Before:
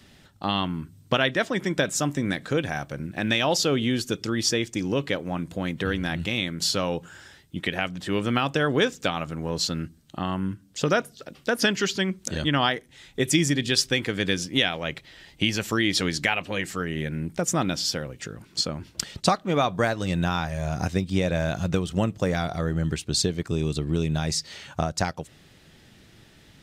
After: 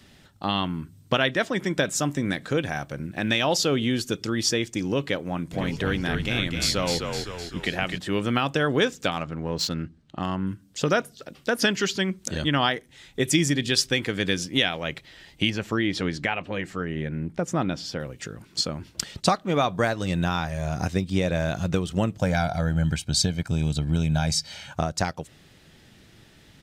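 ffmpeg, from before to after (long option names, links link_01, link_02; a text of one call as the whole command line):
ffmpeg -i in.wav -filter_complex "[0:a]asplit=3[link_01][link_02][link_03];[link_01]afade=type=out:start_time=5.52:duration=0.02[link_04];[link_02]asplit=8[link_05][link_06][link_07][link_08][link_09][link_10][link_11][link_12];[link_06]adelay=255,afreqshift=-45,volume=-5dB[link_13];[link_07]adelay=510,afreqshift=-90,volume=-10.4dB[link_14];[link_08]adelay=765,afreqshift=-135,volume=-15.7dB[link_15];[link_09]adelay=1020,afreqshift=-180,volume=-21.1dB[link_16];[link_10]adelay=1275,afreqshift=-225,volume=-26.4dB[link_17];[link_11]adelay=1530,afreqshift=-270,volume=-31.8dB[link_18];[link_12]adelay=1785,afreqshift=-315,volume=-37.1dB[link_19];[link_05][link_13][link_14][link_15][link_16][link_17][link_18][link_19]amix=inputs=8:normalize=0,afade=type=in:start_time=5.52:duration=0.02,afade=type=out:start_time=7.97:duration=0.02[link_20];[link_03]afade=type=in:start_time=7.97:duration=0.02[link_21];[link_04][link_20][link_21]amix=inputs=3:normalize=0,asettb=1/sr,asplit=3[link_22][link_23][link_24];[link_22]atrim=end=9.114[link_25];[link_23]atrim=start=9.11:end=10.47,asetpts=PTS-STARTPTS,afade=type=in:duration=0.004:curve=qsin,afade=type=out:start_time=1.356:duration=0.004:curve=qsin,adynamicsmooth=sensitivity=6:basefreq=3600[link_26];[link_24]atrim=start=10.466[link_27];[link_25][link_26]acrossfade=duration=0.004:curve1=hsin:curve2=qsin[link_28];[link_28][link_27]acrossfade=duration=0.004:curve1=qsin:curve2=hsin,asettb=1/sr,asplit=3[link_29][link_30][link_31];[link_29]atrim=end=15.504[link_32];[link_30]atrim=start=15.5:end=18,asetpts=PTS-STARTPTS,afade=type=in:duration=0.004:curve=qsin,afade=type=out:start_time=2.496:duration=0.004:curve=qsin,lowpass=frequency=1800:poles=1[link_33];[link_31]atrim=start=17.996[link_34];[link_32][link_33]acrossfade=duration=0.004:curve1=hsin:curve2=qsin[link_35];[link_35][link_34]acrossfade=duration=0.004:curve1=qsin:curve2=hsin,asettb=1/sr,asplit=3[link_36][link_37][link_38];[link_36]atrim=end=22.194[link_39];[link_37]atrim=start=22.19:end=24.73,asetpts=PTS-STARTPTS,afade=type=in:duration=0.004:curve=qsin,afade=type=out:start_time=2.536:duration=0.004:curve=qsin,aecho=1:1:1.3:0.68,atrim=end_sample=112014[link_40];[link_38]atrim=start=24.726[link_41];[link_39][link_40]acrossfade=duration=0.004:curve1=hsin:curve2=qsin[link_42];[link_42][link_41]acrossfade=duration=0.004:curve1=qsin:curve2=hsin" out.wav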